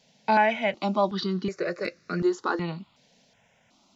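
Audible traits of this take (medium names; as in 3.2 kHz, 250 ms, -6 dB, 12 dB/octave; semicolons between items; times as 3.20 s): notches that jump at a steady rate 2.7 Hz 330–3200 Hz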